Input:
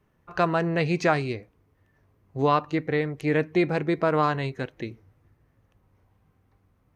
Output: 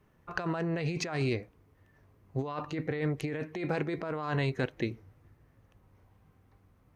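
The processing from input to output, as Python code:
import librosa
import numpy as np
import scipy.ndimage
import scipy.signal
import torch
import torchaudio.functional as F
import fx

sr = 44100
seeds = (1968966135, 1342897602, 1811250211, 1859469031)

y = fx.low_shelf(x, sr, hz=270.0, db=-6.0, at=(3.4, 3.96))
y = fx.over_compress(y, sr, threshold_db=-29.0, ratio=-1.0)
y = y * 10.0 ** (-3.0 / 20.0)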